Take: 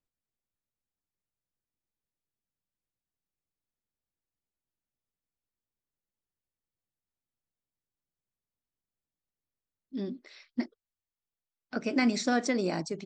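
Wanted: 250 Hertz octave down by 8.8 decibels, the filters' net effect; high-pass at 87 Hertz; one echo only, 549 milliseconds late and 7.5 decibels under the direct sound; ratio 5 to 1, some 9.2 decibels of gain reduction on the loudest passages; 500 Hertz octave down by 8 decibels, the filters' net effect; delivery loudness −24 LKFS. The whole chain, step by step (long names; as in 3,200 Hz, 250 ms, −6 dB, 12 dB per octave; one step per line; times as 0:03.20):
high-pass filter 87 Hz
parametric band 250 Hz −8 dB
parametric band 500 Hz −7.5 dB
downward compressor 5 to 1, threshold −37 dBFS
single-tap delay 549 ms −7.5 dB
level +18.5 dB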